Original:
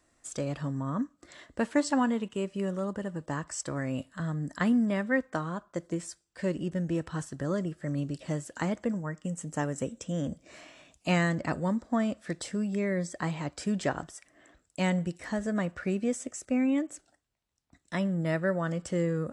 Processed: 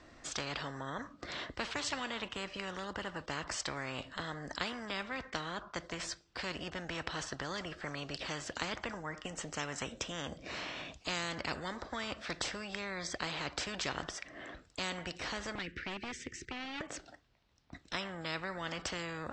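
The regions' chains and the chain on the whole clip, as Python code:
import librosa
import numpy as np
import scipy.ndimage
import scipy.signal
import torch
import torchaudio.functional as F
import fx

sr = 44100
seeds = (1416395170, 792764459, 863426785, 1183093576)

y = fx.chain(x, sr, fx.cheby1_bandstop(low_hz=360.0, high_hz=1800.0, order=3),
    fx.high_shelf(hz=3800.0, db=-11.5),
    fx.overload_stage(gain_db=27.5), at=(15.55, 16.81))
y = scipy.signal.sosfilt(scipy.signal.butter(4, 5100.0, 'lowpass', fs=sr, output='sos'), y)
y = fx.spectral_comp(y, sr, ratio=4.0)
y = y * 10.0 ** (-1.5 / 20.0)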